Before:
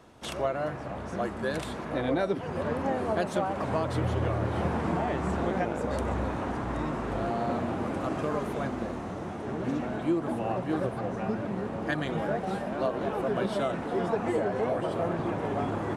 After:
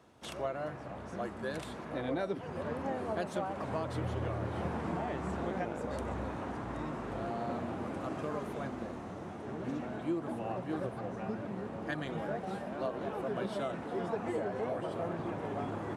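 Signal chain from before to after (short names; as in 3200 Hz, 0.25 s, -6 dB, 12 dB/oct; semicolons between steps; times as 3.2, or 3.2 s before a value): HPF 59 Hz; gain -7 dB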